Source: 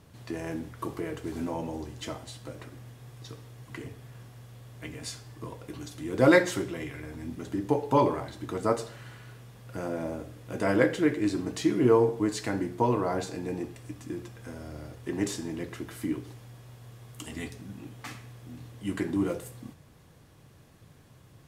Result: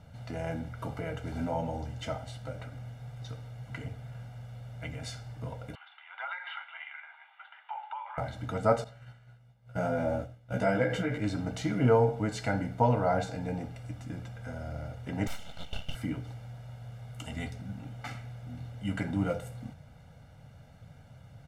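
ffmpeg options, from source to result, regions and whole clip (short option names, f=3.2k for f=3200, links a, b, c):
-filter_complex "[0:a]asettb=1/sr,asplit=3[a][b][c];[a]atrim=end=5.754[d];[b]atrim=start=5.75:end=8.18,asetpts=PTS-STARTPTS,afade=t=in:d=0.004:c=qsin,afade=t=out:st=2.426:d=0.004:c=qsin,asuperpass=centerf=1700:order=12:qfactor=0.67,acompressor=threshold=-35dB:ratio=16:attack=3.2:release=140:knee=1:detection=peak[e];[c]atrim=start=8.176[f];[d][e]acrossfade=d=0.004:c1=hsin:c2=qsin[g];[g][f]acrossfade=d=0.004:c1=qsin:c2=hsin,asettb=1/sr,asplit=3[h][i][j];[h]atrim=end=8.844[k];[i]atrim=start=8.84:end=11.18,asetpts=PTS-STARTPTS,afade=t=in:d=0.004:c=qsin,afade=t=out:st=2.336:d=0.004:c=qsin,agate=range=-33dB:threshold=-37dB:ratio=3:release=100:detection=peak,acompressor=threshold=-27dB:ratio=3:attack=3.2:release=140:knee=1:detection=peak,asplit=2[l][m];[m]adelay=16,volume=-2dB[n];[l][n]amix=inputs=2:normalize=0,atrim=end_sample=103194[o];[j]atrim=start=11.176[p];[k][o]acrossfade=d=0.004:c1=hsin:c2=qsin[q];[q][p]acrossfade=d=0.004:c1=qsin:c2=hsin,asettb=1/sr,asplit=3[r][s][t];[r]atrim=end=15.274[u];[s]atrim=start=15.27:end=15.95,asetpts=PTS-STARTPTS,afade=t=in:d=0.004:c=qsin,afade=t=out:st=0.676:d=0.004:c=qsin,highpass=f=1.4k:t=q:w=8.3,aeval=exprs='abs(val(0))':c=same[v];[t]atrim=start=15.946[w];[u][v]acrossfade=d=0.004:c1=hsin:c2=qsin[x];[x][w]acrossfade=d=0.004:c1=qsin:c2=hsin,lowpass=f=2.5k:p=1,aecho=1:1:1.4:0.91"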